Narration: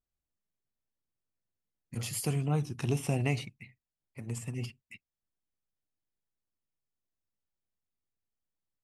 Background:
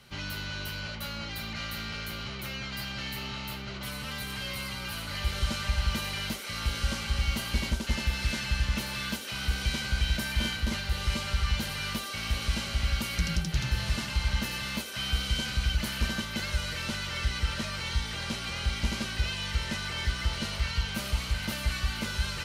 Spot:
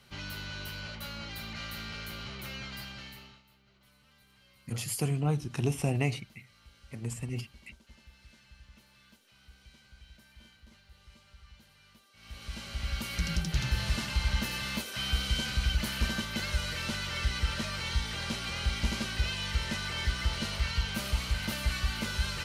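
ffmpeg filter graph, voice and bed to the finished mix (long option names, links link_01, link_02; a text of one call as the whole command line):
ffmpeg -i stem1.wav -i stem2.wav -filter_complex "[0:a]adelay=2750,volume=1dB[link_01];[1:a]volume=22dB,afade=type=out:start_time=2.63:duration=0.8:silence=0.0707946,afade=type=in:start_time=12.14:duration=1.37:silence=0.0501187[link_02];[link_01][link_02]amix=inputs=2:normalize=0" out.wav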